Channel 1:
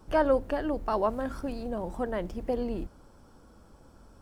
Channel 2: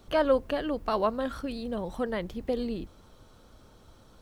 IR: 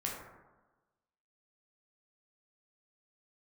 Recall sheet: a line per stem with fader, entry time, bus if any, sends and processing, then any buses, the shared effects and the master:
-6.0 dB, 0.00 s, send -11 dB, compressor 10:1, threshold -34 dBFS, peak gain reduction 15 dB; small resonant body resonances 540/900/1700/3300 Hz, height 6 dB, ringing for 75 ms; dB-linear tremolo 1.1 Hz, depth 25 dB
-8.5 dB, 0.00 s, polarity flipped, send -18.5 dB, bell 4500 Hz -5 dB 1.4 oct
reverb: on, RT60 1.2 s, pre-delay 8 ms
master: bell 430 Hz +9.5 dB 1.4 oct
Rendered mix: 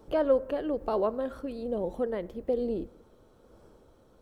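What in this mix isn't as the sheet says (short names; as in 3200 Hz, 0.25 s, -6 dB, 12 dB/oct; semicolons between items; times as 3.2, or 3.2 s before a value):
stem 1: send off; stem 2: polarity flipped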